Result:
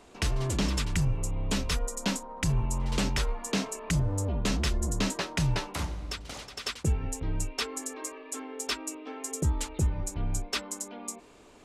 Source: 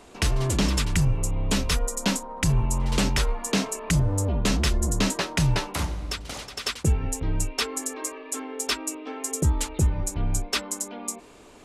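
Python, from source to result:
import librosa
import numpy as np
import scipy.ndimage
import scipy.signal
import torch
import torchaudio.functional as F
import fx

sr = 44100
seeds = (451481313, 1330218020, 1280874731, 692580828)

y = fx.peak_eq(x, sr, hz=11000.0, db=-3.5, octaves=0.61)
y = y * librosa.db_to_amplitude(-5.0)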